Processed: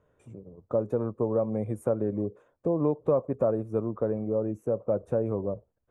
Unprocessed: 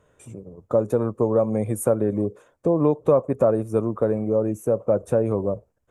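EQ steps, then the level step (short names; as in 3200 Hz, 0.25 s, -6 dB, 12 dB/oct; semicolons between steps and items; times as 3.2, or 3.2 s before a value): LPF 1400 Hz 6 dB/oct; -6.0 dB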